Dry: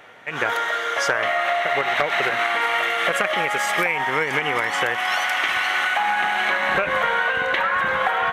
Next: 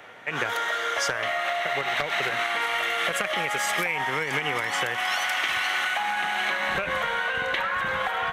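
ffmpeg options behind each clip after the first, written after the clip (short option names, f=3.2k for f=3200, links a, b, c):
-filter_complex "[0:a]acrossover=split=160|3000[a][b][c];[b]acompressor=threshold=-25dB:ratio=6[d];[a][d][c]amix=inputs=3:normalize=0"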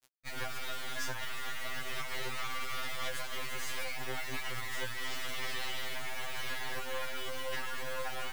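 -af "acrusher=bits=3:dc=4:mix=0:aa=0.000001,afftfilt=real='re*2.45*eq(mod(b,6),0)':imag='im*2.45*eq(mod(b,6),0)':win_size=2048:overlap=0.75,volume=-6dB"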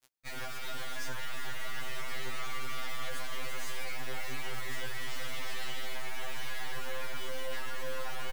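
-filter_complex "[0:a]asoftclip=type=tanh:threshold=-31dB,asplit=2[a][b];[b]adelay=379,lowpass=f=1.2k:p=1,volume=-4dB,asplit=2[c][d];[d]adelay=379,lowpass=f=1.2k:p=1,volume=0.46,asplit=2[e][f];[f]adelay=379,lowpass=f=1.2k:p=1,volume=0.46,asplit=2[g][h];[h]adelay=379,lowpass=f=1.2k:p=1,volume=0.46,asplit=2[i][j];[j]adelay=379,lowpass=f=1.2k:p=1,volume=0.46,asplit=2[k][l];[l]adelay=379,lowpass=f=1.2k:p=1,volume=0.46[m];[a][c][e][g][i][k][m]amix=inputs=7:normalize=0,volume=2dB"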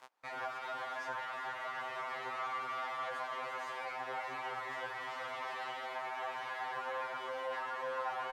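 -af "acompressor=mode=upward:threshold=-37dB:ratio=2.5,bandpass=f=900:t=q:w=1.9:csg=0,volume=8.5dB"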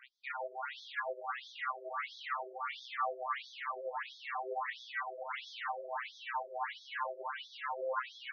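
-af "flanger=delay=5.1:depth=5.4:regen=39:speed=0.8:shape=sinusoidal,afftfilt=real='re*between(b*sr/1024,450*pow(4700/450,0.5+0.5*sin(2*PI*1.5*pts/sr))/1.41,450*pow(4700/450,0.5+0.5*sin(2*PI*1.5*pts/sr))*1.41)':imag='im*between(b*sr/1024,450*pow(4700/450,0.5+0.5*sin(2*PI*1.5*pts/sr))/1.41,450*pow(4700/450,0.5+0.5*sin(2*PI*1.5*pts/sr))*1.41)':win_size=1024:overlap=0.75,volume=11dB"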